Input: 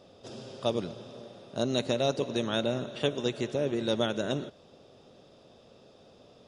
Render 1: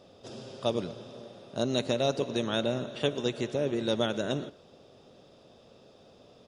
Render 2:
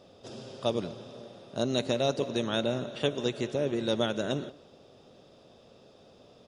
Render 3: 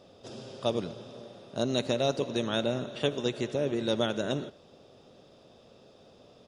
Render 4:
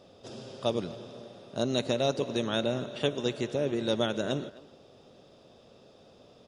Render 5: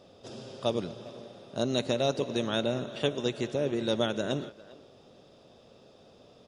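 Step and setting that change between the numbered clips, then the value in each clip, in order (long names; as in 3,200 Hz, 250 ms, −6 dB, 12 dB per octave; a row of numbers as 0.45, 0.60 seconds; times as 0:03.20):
far-end echo of a speakerphone, delay time: 120, 180, 80, 260, 400 milliseconds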